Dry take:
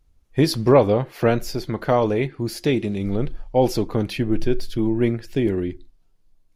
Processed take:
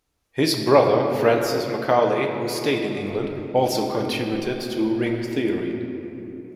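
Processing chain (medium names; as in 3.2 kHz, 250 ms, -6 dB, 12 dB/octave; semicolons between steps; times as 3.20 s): high-pass 540 Hz 6 dB/octave; 3.03–5.42 s: phaser 1.9 Hz, delay 4.3 ms, feedback 38%; simulated room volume 180 m³, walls hard, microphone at 0.35 m; trim +2 dB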